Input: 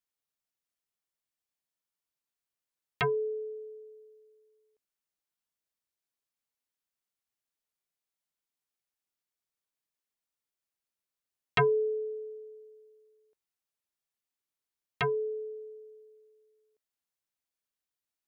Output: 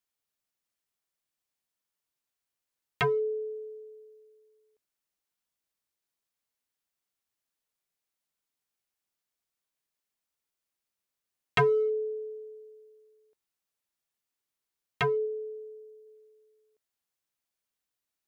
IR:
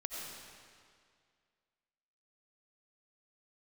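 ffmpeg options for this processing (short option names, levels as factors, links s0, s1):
-filter_complex "[0:a]asplit=3[s0][s1][s2];[s0]afade=t=out:st=15.25:d=0.02[s3];[s1]equalizer=f=1400:t=o:w=1.9:g=-8.5,afade=t=in:st=15.25:d=0.02,afade=t=out:st=16.05:d=0.02[s4];[s2]afade=t=in:st=16.05:d=0.02[s5];[s3][s4][s5]amix=inputs=3:normalize=0,asplit=2[s6][s7];[s7]asoftclip=type=hard:threshold=0.0398,volume=0.355[s8];[s6][s8]amix=inputs=2:normalize=0"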